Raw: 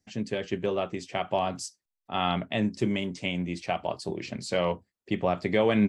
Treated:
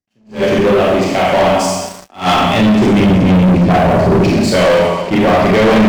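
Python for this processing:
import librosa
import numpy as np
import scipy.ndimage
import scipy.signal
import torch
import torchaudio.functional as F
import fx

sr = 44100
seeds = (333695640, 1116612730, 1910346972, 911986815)

p1 = fx.level_steps(x, sr, step_db=13)
p2 = x + (p1 * 10.0 ** (-3.0 / 20.0))
p3 = fx.cheby1_highpass(p2, sr, hz=190.0, order=8, at=(1.48, 2.14), fade=0.02)
p4 = fx.tilt_eq(p3, sr, slope=-4.5, at=(3.0, 4.24))
p5 = p4 + fx.echo_feedback(p4, sr, ms=263, feedback_pct=48, wet_db=-23.0, dry=0)
p6 = fx.rev_schroeder(p5, sr, rt60_s=1.1, comb_ms=29, drr_db=-3.5)
p7 = fx.leveller(p6, sr, passes=5)
p8 = fx.high_shelf(p7, sr, hz=4100.0, db=-7.0)
p9 = fx.attack_slew(p8, sr, db_per_s=210.0)
y = p9 * 10.0 ** (-2.5 / 20.0)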